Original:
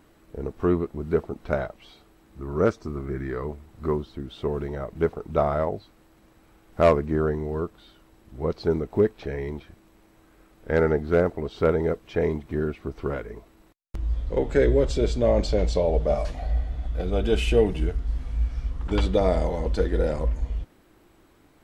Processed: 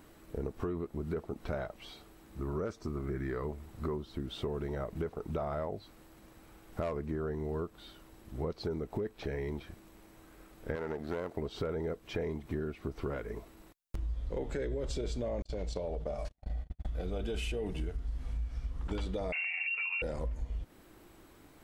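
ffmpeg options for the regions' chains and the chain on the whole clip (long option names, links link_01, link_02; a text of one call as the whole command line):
ffmpeg -i in.wav -filter_complex "[0:a]asettb=1/sr,asplit=3[link_01][link_02][link_03];[link_01]atrim=end=10.754[link_04];[link_02]atrim=start=10.75:end=11.37,asetpts=PTS-STARTPTS,afade=type=in:duration=0.004:curve=qsin,afade=type=out:start_time=0.616:duration=0.004:curve=qsin,aeval=exprs='if(lt(val(0),0),0.447*val(0),val(0))':channel_layout=same,highpass=frequency=250:poles=1,acompressor=threshold=-28dB:ratio=3:attack=3.2:release=140:knee=1:detection=peak[link_05];[link_03]atrim=start=11.366[link_06];[link_04][link_05]acrossfade=duration=0.004:curve1=hsin:curve2=qsin[link_07];[link_07][link_06]acrossfade=duration=0.004:curve1=qsin:curve2=hsin,asettb=1/sr,asplit=3[link_08][link_09][link_10];[link_08]atrim=end=15.424[link_11];[link_09]atrim=start=15.42:end=16.85,asetpts=PTS-STARTPTS,afade=type=in:duration=0.004:curve=qsin,afade=type=out:start_time=1.426:duration=0.004:curve=qsin,agate=range=-55dB:threshold=-26dB:ratio=16:release=100:detection=peak,acompressor=threshold=-28dB:ratio=4:attack=3.2:release=140:knee=1:detection=peak[link_12];[link_10]atrim=start=16.846[link_13];[link_11][link_12]acrossfade=duration=0.004:curve1=hsin:curve2=qsin[link_14];[link_14][link_13]acrossfade=duration=0.004:curve1=qsin:curve2=hsin,asettb=1/sr,asplit=3[link_15][link_16][link_17];[link_15]atrim=end=19.324[link_18];[link_16]atrim=start=19.32:end=20.02,asetpts=PTS-STARTPTS,afade=type=in:duration=0.004:curve=qsin,afade=type=out:start_time=0.696:duration=0.004:curve=qsin,asoftclip=type=hard:threshold=-14.5dB,lowpass=frequency=2400:width_type=q:width=0.5098,lowpass=frequency=2400:width_type=q:width=0.6013,lowpass=frequency=2400:width_type=q:width=0.9,lowpass=frequency=2400:width_type=q:width=2.563,afreqshift=-2800[link_19];[link_17]atrim=start=20.016[link_20];[link_18][link_19]acrossfade=duration=0.004:curve1=hsin:curve2=qsin[link_21];[link_21][link_20]acrossfade=duration=0.004:curve1=qsin:curve2=hsin,highshelf=frequency=7300:gain=5.5,alimiter=limit=-17dB:level=0:latency=1:release=10,acompressor=threshold=-33dB:ratio=6" out.wav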